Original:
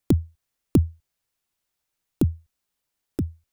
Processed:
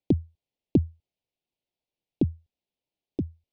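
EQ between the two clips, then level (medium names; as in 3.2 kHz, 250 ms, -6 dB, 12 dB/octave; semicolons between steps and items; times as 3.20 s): Butterworth band-stop 1.4 kHz, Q 0.79; distance through air 280 m; bass shelf 100 Hz -11 dB; 0.0 dB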